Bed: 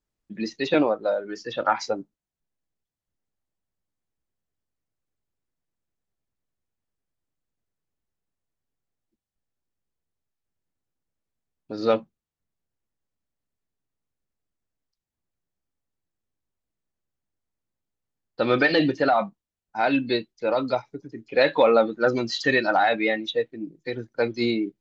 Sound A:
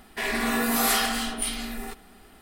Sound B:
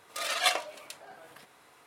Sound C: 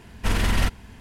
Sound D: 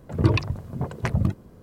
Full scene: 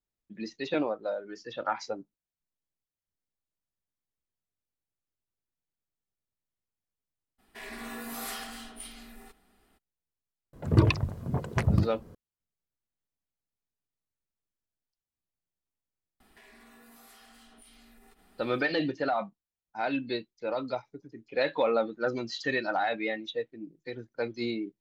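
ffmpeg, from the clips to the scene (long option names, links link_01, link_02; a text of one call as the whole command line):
ffmpeg -i bed.wav -i cue0.wav -i cue1.wav -i cue2.wav -i cue3.wav -filter_complex "[1:a]asplit=2[link_01][link_02];[0:a]volume=-8.5dB[link_03];[link_02]acompressor=threshold=-44dB:ratio=6:attack=3.2:release=140:knee=1:detection=peak[link_04];[link_01]atrim=end=2.41,asetpts=PTS-STARTPTS,volume=-15dB,afade=type=in:duration=0.02,afade=type=out:start_time=2.39:duration=0.02,adelay=325458S[link_05];[4:a]atrim=end=1.62,asetpts=PTS-STARTPTS,volume=-1.5dB,afade=type=in:duration=0.004:curve=hsin,afade=type=out:start_time=1.616:duration=0.004:curve=hsin,adelay=10530[link_06];[link_04]atrim=end=2.41,asetpts=PTS-STARTPTS,volume=-10.5dB,afade=type=in:duration=0.004:curve=hsin,afade=type=out:start_time=2.406:duration=0.004:curve=hsin,adelay=714420S[link_07];[link_03][link_05][link_06][link_07]amix=inputs=4:normalize=0" out.wav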